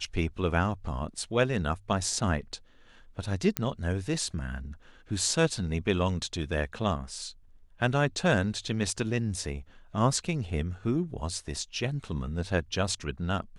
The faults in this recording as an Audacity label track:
3.570000	3.570000	click −9 dBFS

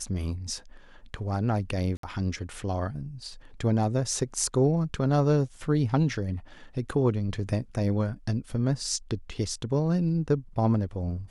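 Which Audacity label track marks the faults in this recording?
1.970000	2.030000	drop-out 63 ms

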